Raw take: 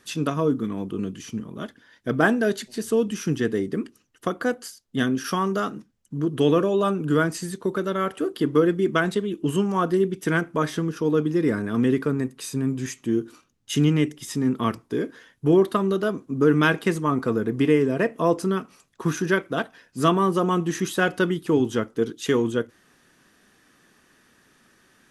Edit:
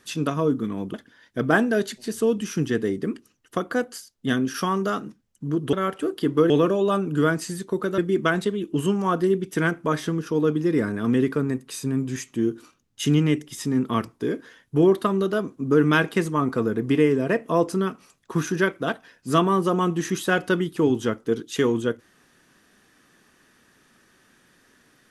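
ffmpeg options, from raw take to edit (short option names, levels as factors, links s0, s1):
-filter_complex "[0:a]asplit=5[s0][s1][s2][s3][s4];[s0]atrim=end=0.942[s5];[s1]atrim=start=1.638:end=6.432[s6];[s2]atrim=start=7.908:end=8.682[s7];[s3]atrim=start=6.428:end=7.912[s8];[s4]atrim=start=8.678[s9];[s5][s6]acrossfade=d=0.004:c1=hsin:c2=hsin[s10];[s10][s7]acrossfade=d=0.004:c1=hsin:c2=hsin[s11];[s11][s8]acrossfade=d=0.004:c1=hsin:c2=hsin[s12];[s12][s9]acrossfade=d=0.004:c1=hsin:c2=hsin"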